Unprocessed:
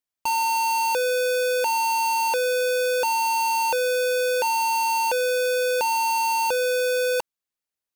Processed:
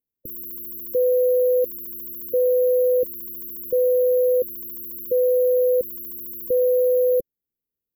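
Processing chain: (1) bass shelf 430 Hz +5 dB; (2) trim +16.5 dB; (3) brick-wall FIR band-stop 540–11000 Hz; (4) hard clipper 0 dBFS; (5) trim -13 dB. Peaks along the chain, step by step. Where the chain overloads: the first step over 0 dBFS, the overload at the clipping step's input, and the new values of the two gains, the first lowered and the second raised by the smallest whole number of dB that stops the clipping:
-18.0 dBFS, -1.5 dBFS, -1.5 dBFS, -1.5 dBFS, -14.5 dBFS; nothing clips

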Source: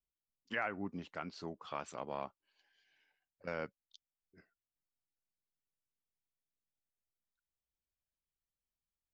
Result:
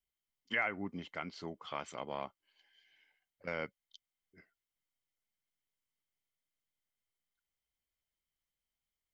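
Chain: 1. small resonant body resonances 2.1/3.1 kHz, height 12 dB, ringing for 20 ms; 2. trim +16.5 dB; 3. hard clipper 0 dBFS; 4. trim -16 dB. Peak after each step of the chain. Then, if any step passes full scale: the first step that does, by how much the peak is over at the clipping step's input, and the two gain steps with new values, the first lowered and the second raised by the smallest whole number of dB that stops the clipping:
-21.0 dBFS, -4.5 dBFS, -4.5 dBFS, -20.5 dBFS; nothing clips

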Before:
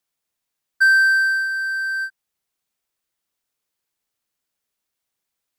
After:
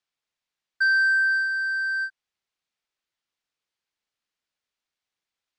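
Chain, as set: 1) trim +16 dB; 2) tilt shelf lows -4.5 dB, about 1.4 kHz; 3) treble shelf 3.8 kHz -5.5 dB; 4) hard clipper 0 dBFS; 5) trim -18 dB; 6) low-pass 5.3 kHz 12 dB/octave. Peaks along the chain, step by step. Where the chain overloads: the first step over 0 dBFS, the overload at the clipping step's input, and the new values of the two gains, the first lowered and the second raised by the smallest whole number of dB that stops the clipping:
+8.5 dBFS, +9.0 dBFS, +8.0 dBFS, 0.0 dBFS, -18.0 dBFS, -17.5 dBFS; step 1, 8.0 dB; step 1 +8 dB, step 5 -10 dB

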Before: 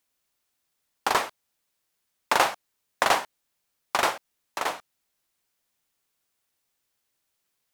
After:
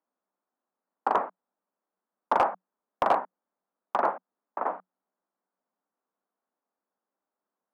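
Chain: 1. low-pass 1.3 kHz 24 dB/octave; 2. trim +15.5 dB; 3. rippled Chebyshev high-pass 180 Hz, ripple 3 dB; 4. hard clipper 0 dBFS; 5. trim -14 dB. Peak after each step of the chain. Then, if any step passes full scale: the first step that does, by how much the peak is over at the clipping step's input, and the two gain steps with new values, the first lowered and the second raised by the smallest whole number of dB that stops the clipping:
-7.5 dBFS, +8.0 dBFS, +7.0 dBFS, 0.0 dBFS, -14.0 dBFS; step 2, 7.0 dB; step 2 +8.5 dB, step 5 -7 dB

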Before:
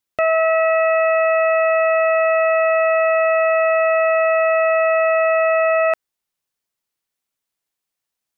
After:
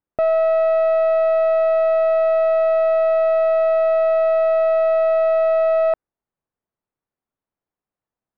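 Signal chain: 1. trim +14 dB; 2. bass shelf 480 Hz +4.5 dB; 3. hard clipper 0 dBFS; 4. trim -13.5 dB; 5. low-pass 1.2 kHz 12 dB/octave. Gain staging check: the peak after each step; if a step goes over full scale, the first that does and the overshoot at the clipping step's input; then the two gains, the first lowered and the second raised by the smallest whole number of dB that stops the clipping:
+3.0 dBFS, +5.0 dBFS, 0.0 dBFS, -13.5 dBFS, -13.0 dBFS; step 1, 5.0 dB; step 1 +9 dB, step 4 -8.5 dB

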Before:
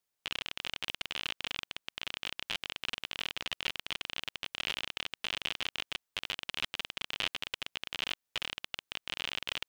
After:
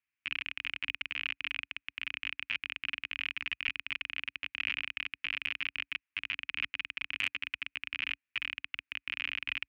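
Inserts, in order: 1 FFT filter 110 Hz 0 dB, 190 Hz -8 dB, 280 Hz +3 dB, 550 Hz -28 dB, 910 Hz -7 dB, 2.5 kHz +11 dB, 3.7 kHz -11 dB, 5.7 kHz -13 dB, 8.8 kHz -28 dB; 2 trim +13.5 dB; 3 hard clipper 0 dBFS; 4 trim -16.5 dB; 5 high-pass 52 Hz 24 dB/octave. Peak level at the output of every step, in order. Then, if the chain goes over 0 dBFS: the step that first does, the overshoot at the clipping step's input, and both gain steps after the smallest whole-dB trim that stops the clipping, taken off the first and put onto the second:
-10.5 dBFS, +3.0 dBFS, 0.0 dBFS, -16.5 dBFS, -16.0 dBFS; step 2, 3.0 dB; step 2 +10.5 dB, step 4 -13.5 dB

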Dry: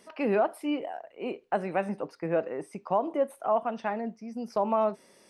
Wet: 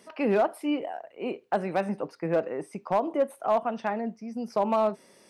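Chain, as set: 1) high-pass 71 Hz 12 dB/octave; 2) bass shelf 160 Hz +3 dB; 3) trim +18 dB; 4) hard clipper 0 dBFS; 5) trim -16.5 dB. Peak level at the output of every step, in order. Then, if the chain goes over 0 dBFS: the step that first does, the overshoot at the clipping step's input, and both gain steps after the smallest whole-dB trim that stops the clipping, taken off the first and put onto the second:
-14.5 dBFS, -14.0 dBFS, +4.0 dBFS, 0.0 dBFS, -16.5 dBFS; step 3, 4.0 dB; step 3 +14 dB, step 5 -12.5 dB

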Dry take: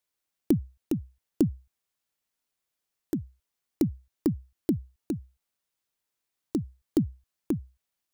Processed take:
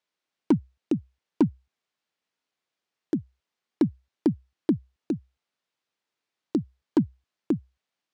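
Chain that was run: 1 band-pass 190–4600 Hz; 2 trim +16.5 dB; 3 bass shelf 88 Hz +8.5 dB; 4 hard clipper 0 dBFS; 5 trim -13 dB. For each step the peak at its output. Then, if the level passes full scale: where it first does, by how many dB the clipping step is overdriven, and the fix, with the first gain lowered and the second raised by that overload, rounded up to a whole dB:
-12.5 dBFS, +4.0 dBFS, +5.0 dBFS, 0.0 dBFS, -13.0 dBFS; step 2, 5.0 dB; step 2 +11.5 dB, step 5 -8 dB

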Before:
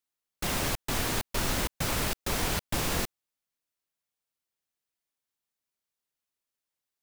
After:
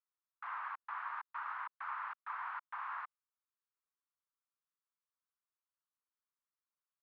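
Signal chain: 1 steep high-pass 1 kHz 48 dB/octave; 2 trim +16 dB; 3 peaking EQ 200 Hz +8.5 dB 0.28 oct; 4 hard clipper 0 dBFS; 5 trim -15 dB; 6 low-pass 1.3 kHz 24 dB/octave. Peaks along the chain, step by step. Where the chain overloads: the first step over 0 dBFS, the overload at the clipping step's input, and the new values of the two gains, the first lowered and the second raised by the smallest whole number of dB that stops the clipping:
-19.5 dBFS, -3.5 dBFS, -3.5 dBFS, -3.5 dBFS, -18.5 dBFS, -29.0 dBFS; nothing clips

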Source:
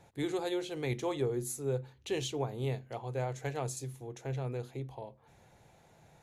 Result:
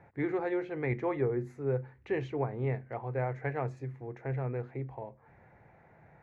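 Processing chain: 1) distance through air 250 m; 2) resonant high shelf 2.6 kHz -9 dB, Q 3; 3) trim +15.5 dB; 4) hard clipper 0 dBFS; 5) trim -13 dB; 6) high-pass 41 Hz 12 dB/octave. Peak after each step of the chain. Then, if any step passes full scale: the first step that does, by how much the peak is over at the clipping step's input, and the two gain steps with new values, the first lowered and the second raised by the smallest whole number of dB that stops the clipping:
-21.0 dBFS, -20.5 dBFS, -5.0 dBFS, -5.0 dBFS, -18.0 dBFS, -19.0 dBFS; nothing clips

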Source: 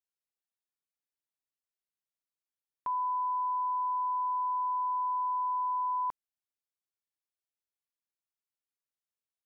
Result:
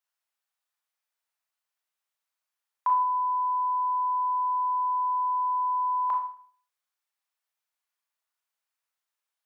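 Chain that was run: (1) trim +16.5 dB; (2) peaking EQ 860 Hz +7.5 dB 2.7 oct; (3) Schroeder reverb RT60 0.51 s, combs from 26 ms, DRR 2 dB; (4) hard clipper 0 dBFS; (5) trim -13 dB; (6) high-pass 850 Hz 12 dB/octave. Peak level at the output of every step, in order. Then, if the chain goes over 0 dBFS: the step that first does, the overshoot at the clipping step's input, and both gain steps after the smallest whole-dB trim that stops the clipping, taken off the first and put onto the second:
-11.5 dBFS, -4.0 dBFS, -2.0 dBFS, -2.0 dBFS, -15.0 dBFS, -17.0 dBFS; nothing clips

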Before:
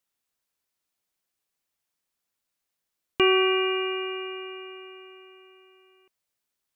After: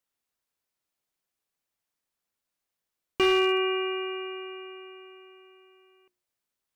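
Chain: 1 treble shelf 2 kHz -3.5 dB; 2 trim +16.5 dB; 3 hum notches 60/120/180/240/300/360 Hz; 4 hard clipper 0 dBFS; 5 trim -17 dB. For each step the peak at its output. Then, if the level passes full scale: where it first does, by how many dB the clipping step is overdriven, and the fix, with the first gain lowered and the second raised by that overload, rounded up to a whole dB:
-10.5 dBFS, +6.0 dBFS, +6.0 dBFS, 0.0 dBFS, -17.0 dBFS; step 2, 6.0 dB; step 2 +10.5 dB, step 5 -11 dB

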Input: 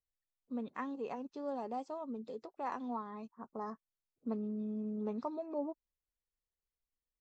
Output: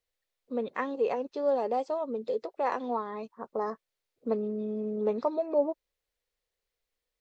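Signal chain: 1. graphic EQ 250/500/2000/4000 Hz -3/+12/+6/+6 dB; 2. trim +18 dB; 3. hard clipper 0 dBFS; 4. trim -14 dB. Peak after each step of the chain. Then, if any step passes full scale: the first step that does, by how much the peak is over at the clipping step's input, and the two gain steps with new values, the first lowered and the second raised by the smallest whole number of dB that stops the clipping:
-19.5 dBFS, -1.5 dBFS, -1.5 dBFS, -15.5 dBFS; nothing clips

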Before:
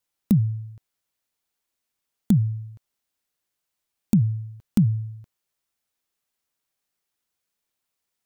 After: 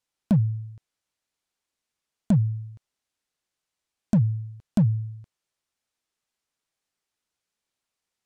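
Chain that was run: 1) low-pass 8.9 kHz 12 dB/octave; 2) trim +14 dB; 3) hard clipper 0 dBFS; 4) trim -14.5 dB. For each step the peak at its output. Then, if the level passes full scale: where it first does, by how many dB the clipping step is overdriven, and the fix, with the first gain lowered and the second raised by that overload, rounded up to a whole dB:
-9.0 dBFS, +5.0 dBFS, 0.0 dBFS, -14.5 dBFS; step 2, 5.0 dB; step 2 +9 dB, step 4 -9.5 dB

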